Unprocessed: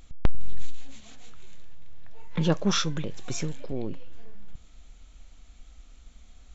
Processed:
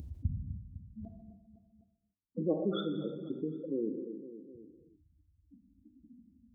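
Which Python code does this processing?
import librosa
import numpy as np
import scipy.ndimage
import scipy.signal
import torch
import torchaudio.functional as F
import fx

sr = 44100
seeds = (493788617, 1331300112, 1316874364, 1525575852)

y = fx.wiener(x, sr, points=25)
y = fx.lowpass(y, sr, hz=2100.0, slope=6)
y = fx.spec_gate(y, sr, threshold_db=-20, keep='strong')
y = fx.highpass(y, sr, hz=fx.steps((0.0, 77.0), (1.05, 280.0)), slope=24)
y = fx.peak_eq(y, sr, hz=1400.0, db=-15.0, octaves=2.1)
y = fx.echo_feedback(y, sr, ms=253, feedback_pct=35, wet_db=-20.0)
y = fx.rev_gated(y, sr, seeds[0], gate_ms=340, shape='falling', drr_db=7.5)
y = fx.env_flatten(y, sr, amount_pct=50)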